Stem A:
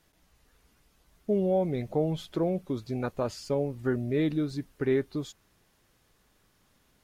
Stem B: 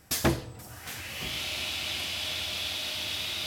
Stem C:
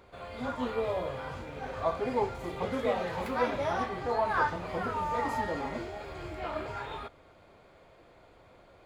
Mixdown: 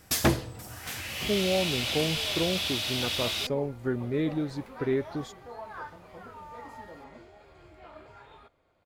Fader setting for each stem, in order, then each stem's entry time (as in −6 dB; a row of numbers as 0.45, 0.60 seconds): −1.5, +2.0, −13.0 decibels; 0.00, 0.00, 1.40 seconds